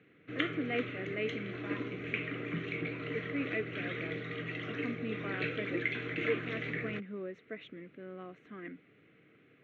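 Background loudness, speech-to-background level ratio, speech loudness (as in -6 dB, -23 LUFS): -38.0 LUFS, -3.5 dB, -41.5 LUFS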